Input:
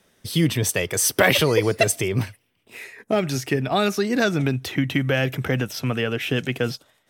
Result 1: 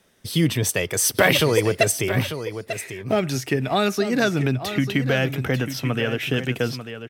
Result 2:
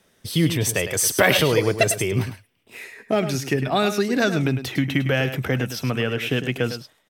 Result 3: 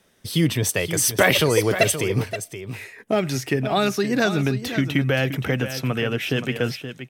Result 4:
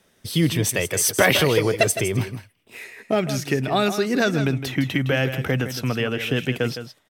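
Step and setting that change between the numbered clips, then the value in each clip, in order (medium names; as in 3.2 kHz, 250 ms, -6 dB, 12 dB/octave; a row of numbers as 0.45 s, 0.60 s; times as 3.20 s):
delay, time: 894 ms, 104 ms, 524 ms, 161 ms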